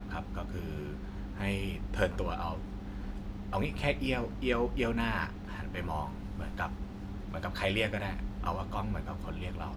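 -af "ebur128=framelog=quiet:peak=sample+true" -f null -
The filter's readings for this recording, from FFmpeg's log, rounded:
Integrated loudness:
  I:         -35.4 LUFS
  Threshold: -45.4 LUFS
Loudness range:
  LRA:         3.0 LU
  Threshold: -55.0 LUFS
  LRA low:   -36.7 LUFS
  LRA high:  -33.7 LUFS
Sample peak:
  Peak:      -14.0 dBFS
True peak:
  Peak:      -14.0 dBFS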